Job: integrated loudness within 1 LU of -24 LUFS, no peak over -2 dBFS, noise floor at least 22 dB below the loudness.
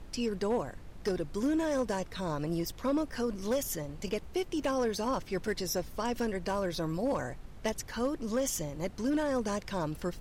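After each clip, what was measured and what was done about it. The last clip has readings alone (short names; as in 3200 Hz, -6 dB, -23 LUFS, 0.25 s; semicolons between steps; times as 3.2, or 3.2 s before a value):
clipped 0.8%; flat tops at -24.0 dBFS; noise floor -48 dBFS; noise floor target -56 dBFS; loudness -33.5 LUFS; peak -24.0 dBFS; loudness target -24.0 LUFS
-> clip repair -24 dBFS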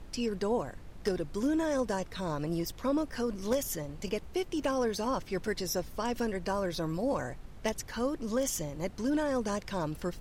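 clipped 0.0%; noise floor -48 dBFS; noise floor target -55 dBFS
-> noise print and reduce 7 dB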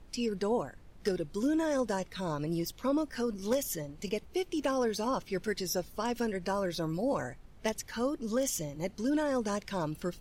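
noise floor -54 dBFS; noise floor target -56 dBFS
-> noise print and reduce 6 dB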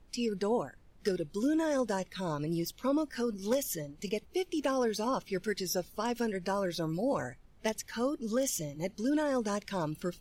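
noise floor -59 dBFS; loudness -33.5 LUFS; peak -16.5 dBFS; loudness target -24.0 LUFS
-> gain +9.5 dB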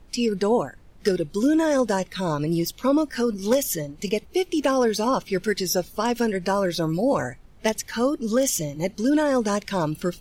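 loudness -24.0 LUFS; peak -7.0 dBFS; noise floor -49 dBFS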